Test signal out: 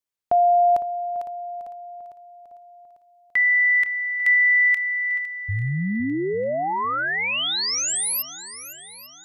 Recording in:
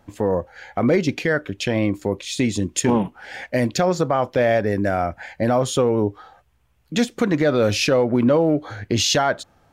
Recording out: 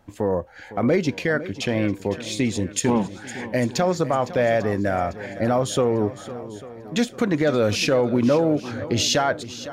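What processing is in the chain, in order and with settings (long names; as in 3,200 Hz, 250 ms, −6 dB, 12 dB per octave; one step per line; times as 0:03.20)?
feedback echo with a long and a short gap by turns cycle 846 ms, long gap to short 1.5 to 1, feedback 37%, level −15 dB
level −2 dB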